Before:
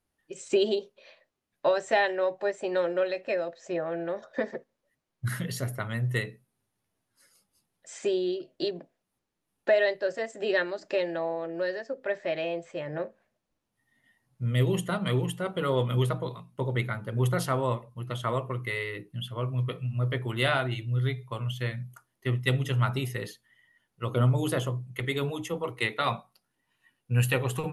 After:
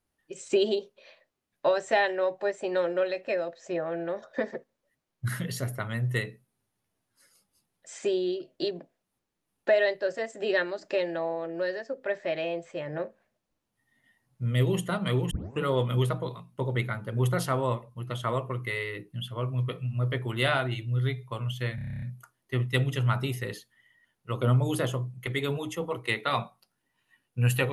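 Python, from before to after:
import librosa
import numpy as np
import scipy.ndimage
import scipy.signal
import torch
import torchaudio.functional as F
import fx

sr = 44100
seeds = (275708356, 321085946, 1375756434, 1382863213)

y = fx.edit(x, sr, fx.tape_start(start_s=15.31, length_s=0.31),
    fx.stutter(start_s=21.75, slice_s=0.03, count=10), tone=tone)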